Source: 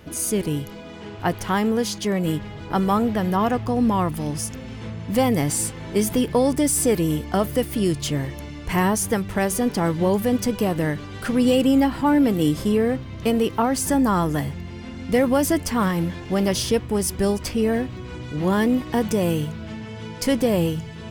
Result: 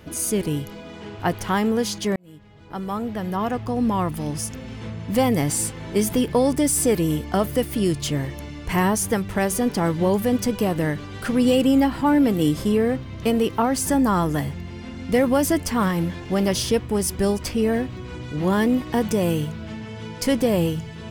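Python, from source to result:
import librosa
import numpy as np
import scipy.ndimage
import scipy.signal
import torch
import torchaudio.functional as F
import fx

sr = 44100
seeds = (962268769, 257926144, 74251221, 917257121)

y = fx.edit(x, sr, fx.fade_in_span(start_s=2.16, length_s=2.87, curve='qsin'), tone=tone)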